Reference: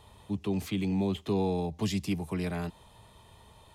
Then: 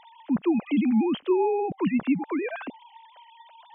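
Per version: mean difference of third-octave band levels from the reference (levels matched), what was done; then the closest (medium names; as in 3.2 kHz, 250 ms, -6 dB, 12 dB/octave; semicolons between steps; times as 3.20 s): 13.0 dB: formants replaced by sine waves; in parallel at +2 dB: compression, threshold -39 dBFS, peak gain reduction 14 dB; on the sum: trim +3.5 dB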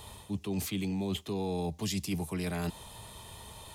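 6.5 dB: treble shelf 4.4 kHz +11 dB; reverse; compression, threshold -37 dBFS, peak gain reduction 12.5 dB; reverse; trim +6 dB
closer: second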